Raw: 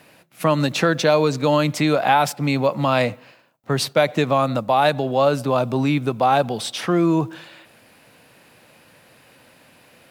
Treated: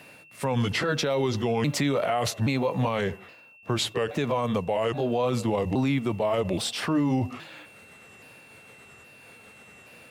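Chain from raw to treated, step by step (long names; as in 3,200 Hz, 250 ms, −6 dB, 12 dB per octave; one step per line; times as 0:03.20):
pitch shifter swept by a sawtooth −5 semitones, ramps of 822 ms
brickwall limiter −17 dBFS, peak gain reduction 11.5 dB
steady tone 2,700 Hz −51 dBFS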